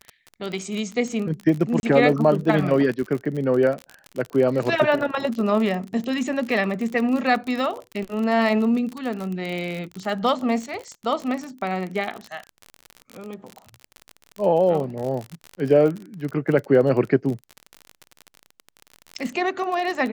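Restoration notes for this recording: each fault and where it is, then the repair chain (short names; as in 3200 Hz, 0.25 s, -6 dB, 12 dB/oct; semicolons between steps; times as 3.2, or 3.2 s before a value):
crackle 41/s -27 dBFS
1.8–1.83 gap 31 ms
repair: de-click; interpolate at 1.8, 31 ms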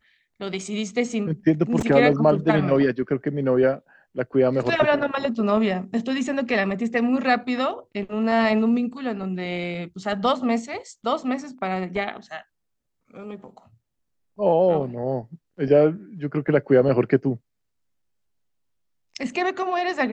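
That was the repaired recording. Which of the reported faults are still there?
none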